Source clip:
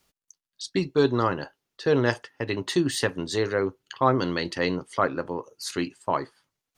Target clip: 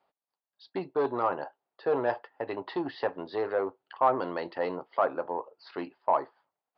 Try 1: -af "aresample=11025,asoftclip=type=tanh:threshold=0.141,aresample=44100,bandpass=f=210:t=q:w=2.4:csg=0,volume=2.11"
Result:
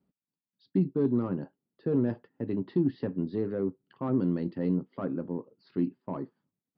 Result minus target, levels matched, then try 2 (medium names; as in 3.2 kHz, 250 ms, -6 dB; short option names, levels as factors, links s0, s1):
1 kHz band -16.5 dB
-af "aresample=11025,asoftclip=type=tanh:threshold=0.141,aresample=44100,bandpass=f=760:t=q:w=2.4:csg=0,volume=2.11"